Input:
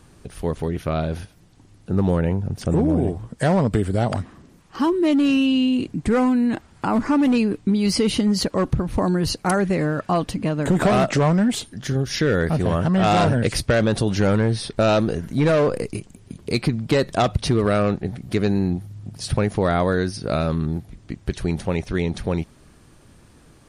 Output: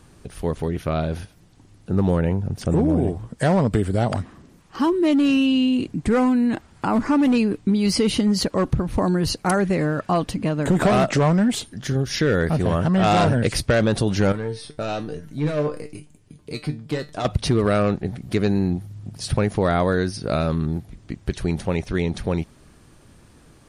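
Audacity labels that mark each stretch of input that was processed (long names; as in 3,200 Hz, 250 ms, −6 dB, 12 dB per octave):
14.320000	17.250000	tuned comb filter 150 Hz, decay 0.23 s, mix 80%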